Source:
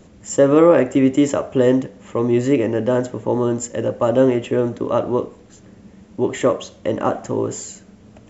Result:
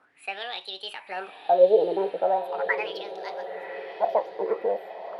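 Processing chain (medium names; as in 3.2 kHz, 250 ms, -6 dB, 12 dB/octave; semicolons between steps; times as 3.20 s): gliding tape speed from 138% -> 181%; wah-wah 0.39 Hz 430–3900 Hz, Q 7.5; echo that smears into a reverb 1039 ms, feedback 52%, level -12 dB; trim +5 dB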